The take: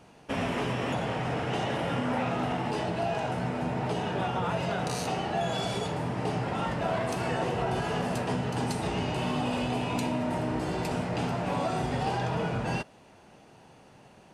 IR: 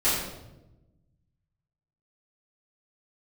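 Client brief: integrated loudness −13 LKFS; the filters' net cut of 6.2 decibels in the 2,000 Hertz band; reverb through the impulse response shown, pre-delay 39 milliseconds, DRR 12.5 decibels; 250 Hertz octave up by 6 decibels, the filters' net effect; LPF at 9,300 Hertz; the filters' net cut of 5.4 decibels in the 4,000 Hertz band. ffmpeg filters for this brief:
-filter_complex "[0:a]lowpass=9300,equalizer=frequency=250:width_type=o:gain=7.5,equalizer=frequency=2000:width_type=o:gain=-7.5,equalizer=frequency=4000:width_type=o:gain=-4,asplit=2[link_01][link_02];[1:a]atrim=start_sample=2205,adelay=39[link_03];[link_02][link_03]afir=irnorm=-1:irlink=0,volume=-26dB[link_04];[link_01][link_04]amix=inputs=2:normalize=0,volume=14.5dB"

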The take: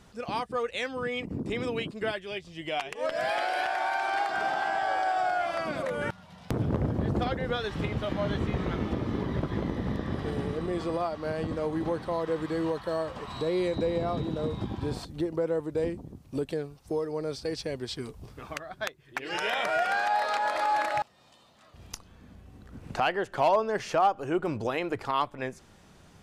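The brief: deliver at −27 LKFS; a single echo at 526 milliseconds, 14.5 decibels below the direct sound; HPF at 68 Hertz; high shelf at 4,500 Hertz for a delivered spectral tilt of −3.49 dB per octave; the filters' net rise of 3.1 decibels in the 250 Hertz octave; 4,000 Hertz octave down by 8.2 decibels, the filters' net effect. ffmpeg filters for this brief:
ffmpeg -i in.wav -af "highpass=68,equalizer=frequency=250:width_type=o:gain=4.5,equalizer=frequency=4000:width_type=o:gain=-8,highshelf=frequency=4500:gain=-7,aecho=1:1:526:0.188,volume=3dB" out.wav

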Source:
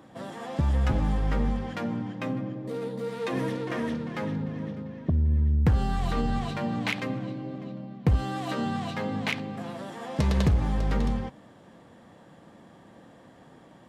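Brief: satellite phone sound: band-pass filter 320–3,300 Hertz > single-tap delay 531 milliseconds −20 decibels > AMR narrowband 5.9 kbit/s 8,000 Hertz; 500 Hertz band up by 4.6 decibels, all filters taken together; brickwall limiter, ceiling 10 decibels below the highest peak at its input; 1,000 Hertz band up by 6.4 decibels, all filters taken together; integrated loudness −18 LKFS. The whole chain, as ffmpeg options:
ffmpeg -i in.wav -af "equalizer=frequency=500:width_type=o:gain=4.5,equalizer=frequency=1000:width_type=o:gain=7,alimiter=limit=-19.5dB:level=0:latency=1,highpass=320,lowpass=3300,aecho=1:1:531:0.1,volume=17dB" -ar 8000 -c:a libopencore_amrnb -b:a 5900 out.amr

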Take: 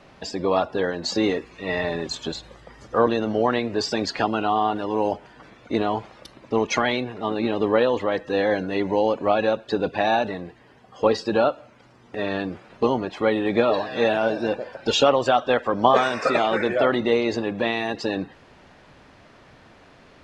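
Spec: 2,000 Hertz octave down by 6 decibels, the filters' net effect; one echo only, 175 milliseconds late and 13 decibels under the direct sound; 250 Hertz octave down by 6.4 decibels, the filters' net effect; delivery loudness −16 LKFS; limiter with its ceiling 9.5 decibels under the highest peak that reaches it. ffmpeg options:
ffmpeg -i in.wav -af "equalizer=frequency=250:width_type=o:gain=-8.5,equalizer=frequency=2000:width_type=o:gain=-8,alimiter=limit=-14dB:level=0:latency=1,aecho=1:1:175:0.224,volume=11dB" out.wav

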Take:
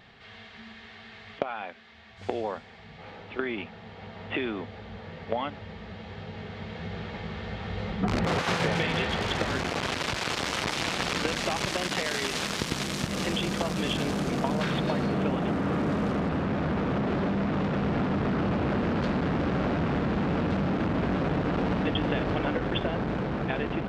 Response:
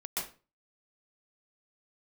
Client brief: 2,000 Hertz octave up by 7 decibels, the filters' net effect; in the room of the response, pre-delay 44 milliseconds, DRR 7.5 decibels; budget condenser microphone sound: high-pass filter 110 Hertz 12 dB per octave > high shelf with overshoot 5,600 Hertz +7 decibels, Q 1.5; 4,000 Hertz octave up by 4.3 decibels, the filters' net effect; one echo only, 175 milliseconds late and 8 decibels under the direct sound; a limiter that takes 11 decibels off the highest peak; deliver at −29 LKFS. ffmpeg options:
-filter_complex "[0:a]equalizer=frequency=2000:width_type=o:gain=8.5,equalizer=frequency=4000:width_type=o:gain=4,alimiter=limit=-18dB:level=0:latency=1,aecho=1:1:175:0.398,asplit=2[link_01][link_02];[1:a]atrim=start_sample=2205,adelay=44[link_03];[link_02][link_03]afir=irnorm=-1:irlink=0,volume=-10.5dB[link_04];[link_01][link_04]amix=inputs=2:normalize=0,highpass=110,highshelf=frequency=5600:width_type=q:width=1.5:gain=7,volume=-1dB"

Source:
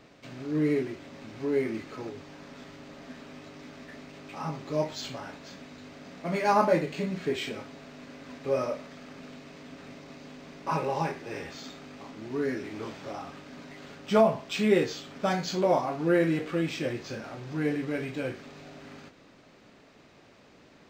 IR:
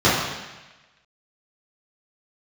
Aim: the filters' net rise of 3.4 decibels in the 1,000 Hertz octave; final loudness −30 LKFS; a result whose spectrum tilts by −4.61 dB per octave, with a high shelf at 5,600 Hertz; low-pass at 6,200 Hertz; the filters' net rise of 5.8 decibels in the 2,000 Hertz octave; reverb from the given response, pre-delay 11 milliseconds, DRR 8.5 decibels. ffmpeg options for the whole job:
-filter_complex "[0:a]lowpass=6200,equalizer=frequency=1000:width_type=o:gain=3,equalizer=frequency=2000:width_type=o:gain=7,highshelf=frequency=5600:gain=-5.5,asplit=2[link_01][link_02];[1:a]atrim=start_sample=2205,adelay=11[link_03];[link_02][link_03]afir=irnorm=-1:irlink=0,volume=-32dB[link_04];[link_01][link_04]amix=inputs=2:normalize=0,volume=-3dB"

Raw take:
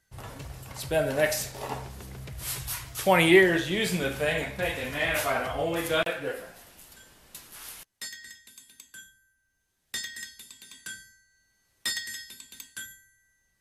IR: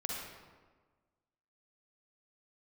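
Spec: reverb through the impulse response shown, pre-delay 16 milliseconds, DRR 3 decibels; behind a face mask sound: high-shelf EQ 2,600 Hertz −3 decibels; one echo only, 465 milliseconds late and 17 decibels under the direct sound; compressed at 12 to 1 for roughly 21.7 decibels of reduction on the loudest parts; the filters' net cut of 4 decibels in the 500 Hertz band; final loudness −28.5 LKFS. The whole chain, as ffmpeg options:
-filter_complex "[0:a]equalizer=frequency=500:width_type=o:gain=-5.5,acompressor=threshold=-37dB:ratio=12,aecho=1:1:465:0.141,asplit=2[link_01][link_02];[1:a]atrim=start_sample=2205,adelay=16[link_03];[link_02][link_03]afir=irnorm=-1:irlink=0,volume=-5.5dB[link_04];[link_01][link_04]amix=inputs=2:normalize=0,highshelf=frequency=2600:gain=-3,volume=13dB"

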